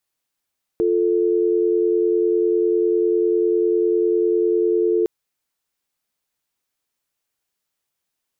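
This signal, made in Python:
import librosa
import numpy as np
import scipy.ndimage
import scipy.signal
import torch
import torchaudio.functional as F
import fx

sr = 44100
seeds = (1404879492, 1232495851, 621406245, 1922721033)

y = fx.call_progress(sr, length_s=4.26, kind='dial tone', level_db=-18.0)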